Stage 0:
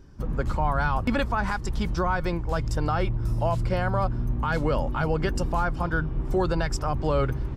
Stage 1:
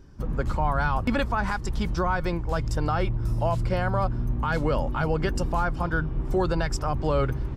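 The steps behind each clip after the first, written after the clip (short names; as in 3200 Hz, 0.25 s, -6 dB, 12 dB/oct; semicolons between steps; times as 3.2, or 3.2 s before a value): nothing audible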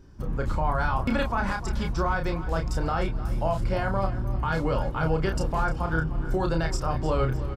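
doubler 31 ms -5 dB; feedback echo 0.304 s, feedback 44%, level -14.5 dB; gain -2 dB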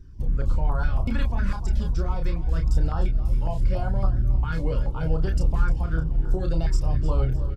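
low shelf 150 Hz +10 dB; flange 0.72 Hz, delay 0.5 ms, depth 1.9 ms, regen +66%; stepped notch 7.2 Hz 700–2200 Hz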